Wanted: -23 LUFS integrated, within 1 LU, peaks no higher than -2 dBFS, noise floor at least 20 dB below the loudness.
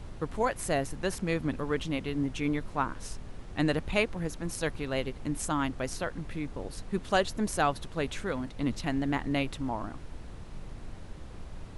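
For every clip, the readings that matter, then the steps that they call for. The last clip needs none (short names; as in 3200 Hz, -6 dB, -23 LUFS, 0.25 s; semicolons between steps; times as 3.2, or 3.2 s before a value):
noise floor -45 dBFS; noise floor target -52 dBFS; loudness -32.0 LUFS; peak -11.0 dBFS; loudness target -23.0 LUFS
-> noise print and reduce 7 dB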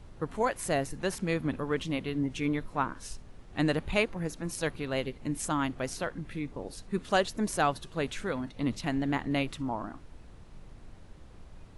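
noise floor -51 dBFS; noise floor target -52 dBFS
-> noise print and reduce 6 dB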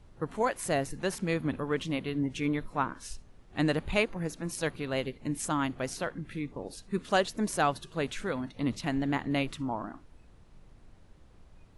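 noise floor -56 dBFS; loudness -32.0 LUFS; peak -11.5 dBFS; loudness target -23.0 LUFS
-> gain +9 dB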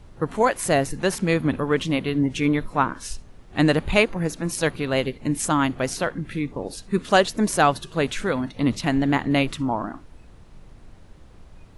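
loudness -23.0 LUFS; peak -2.5 dBFS; noise floor -47 dBFS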